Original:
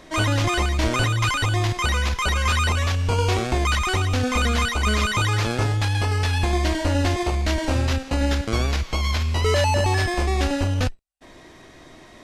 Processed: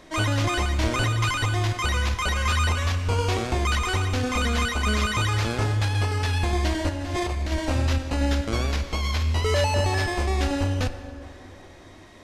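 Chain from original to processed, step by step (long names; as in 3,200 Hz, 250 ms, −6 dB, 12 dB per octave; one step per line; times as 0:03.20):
0:06.89–0:07.52: compressor whose output falls as the input rises −24 dBFS, ratio −0.5
dense smooth reverb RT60 3.7 s, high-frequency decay 0.55×, DRR 10.5 dB
level −3 dB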